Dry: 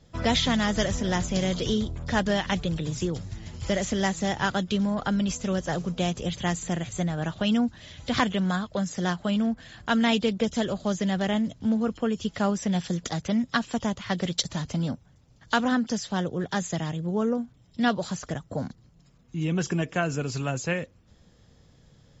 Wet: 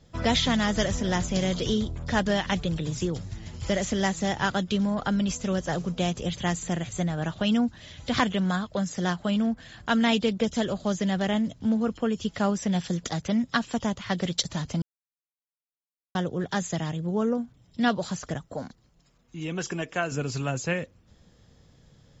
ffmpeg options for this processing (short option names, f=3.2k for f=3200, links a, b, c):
-filter_complex "[0:a]asettb=1/sr,asplit=3[a][b][c];[a]atrim=end=18.454[d];[b]atrim=start=18.45:end=20.12,asetpts=PTS-STARTPTS,afade=t=in:d=0.004:c=qsin,afade=t=out:st=1.666:d=0.004:c=qsin,equalizer=f=120:t=o:w=2.4:g=-9[e];[c]atrim=start=20.116[f];[d][e]acrossfade=d=0.004:c1=hsin:c2=qsin[g];[g][f]acrossfade=d=0.004:c1=qsin:c2=hsin,asplit=3[h][i][j];[h]atrim=end=14.82,asetpts=PTS-STARTPTS,afade=t=out:st=14.816:d=0.004:c=hsin[k];[i]atrim=start=14.82:end=16.15,asetpts=PTS-STARTPTS,volume=0[l];[j]atrim=start=16.15,asetpts=PTS-STARTPTS,afade=t=in:d=0.004:c=hsin[m];[k][l][m]concat=n=3:v=0:a=1"